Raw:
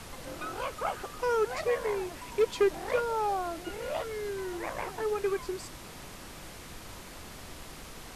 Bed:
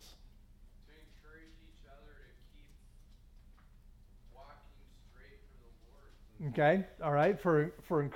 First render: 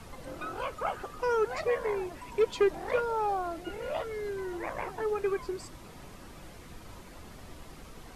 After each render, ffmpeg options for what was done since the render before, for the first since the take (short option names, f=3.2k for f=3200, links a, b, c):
-af "afftdn=nr=8:nf=-46"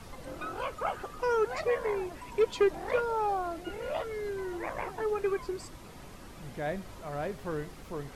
-filter_complex "[1:a]volume=-6.5dB[a];[0:a][a]amix=inputs=2:normalize=0"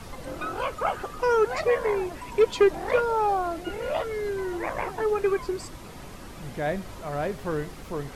-af "volume=6dB"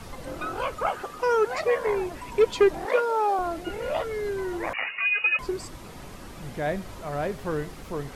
-filter_complex "[0:a]asettb=1/sr,asplit=3[a][b][c];[a]atrim=end=0.874[d];[b]atrim=start=0.87:end=1.87,asetpts=PTS-STARTPTS,afade=t=in:d=0.004:c=qsin,afade=t=out:st=0.996:d=0.004:c=qsin,lowshelf=f=130:g=-11[e];[c]atrim=start=1.866[f];[d][e]acrossfade=d=0.004:c1=hsin:c2=qsin[g];[g][f]acrossfade=d=0.004:c1=qsin:c2=hsin,asettb=1/sr,asplit=3[h][i][j];[h]atrim=end=2.854[k];[i]atrim=start=2.85:end=3.39,asetpts=PTS-STARTPTS,afade=t=in:d=0.004:c=qsin,afade=t=out:st=0.536:d=0.004:c=qsin,highpass=f=260:w=0.5412,highpass=f=260:w=1.3066[l];[j]atrim=start=3.386[m];[k][l]acrossfade=d=0.004:c1=hsin:c2=qsin[n];[n][m]acrossfade=d=0.004:c1=qsin:c2=hsin,asettb=1/sr,asplit=3[o][p][q];[o]atrim=end=4.734[r];[p]atrim=start=4.73:end=5.39,asetpts=PTS-STARTPTS,afade=t=in:d=0.004:c=qsin,afade=t=out:st=0.656:d=0.004:c=qsin,lowpass=f=2.5k:t=q:w=0.5098,lowpass=f=2.5k:t=q:w=0.6013,lowpass=f=2.5k:t=q:w=0.9,lowpass=f=2.5k:t=q:w=2.563,afreqshift=-2900[s];[q]atrim=start=5.386[t];[r][s]acrossfade=d=0.004:c1=hsin:c2=qsin[u];[u][t]acrossfade=d=0.004:c1=qsin:c2=hsin"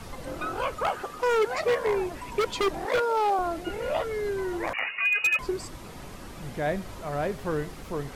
-af "aeval=exprs='0.133*(abs(mod(val(0)/0.133+3,4)-2)-1)':c=same"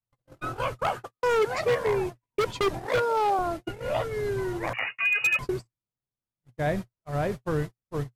-af "agate=range=-58dB:threshold=-31dB:ratio=16:detection=peak,equalizer=f=120:t=o:w=0.54:g=14"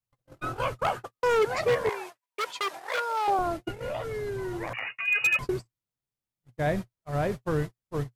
-filter_complex "[0:a]asettb=1/sr,asplit=3[a][b][c];[a]atrim=end=1.894[d];[b]atrim=start=1.89:end=3.28,asetpts=PTS-STARTPTS,afade=t=in:d=0.004:c=qsin,afade=t=out:st=1.386:d=0.004:c=qsin,highpass=820[e];[c]atrim=start=3.276[f];[d][e]acrossfade=d=0.004:c1=hsin:c2=qsin[g];[g][f]acrossfade=d=0.004:c1=qsin:c2=hsin,asettb=1/sr,asplit=3[h][i][j];[h]atrim=end=3.804[k];[i]atrim=start=3.8:end=5.08,asetpts=PTS-STARTPTS,afade=t=in:d=0.004:c=qsin,afade=t=out:st=1.276:d=0.004:c=qsin,acompressor=threshold=-29dB:ratio=6:attack=3.2:release=140:knee=1:detection=peak[l];[j]atrim=start=5.076[m];[k][l]acrossfade=d=0.004:c1=hsin:c2=qsin[n];[n][m]acrossfade=d=0.004:c1=qsin:c2=hsin"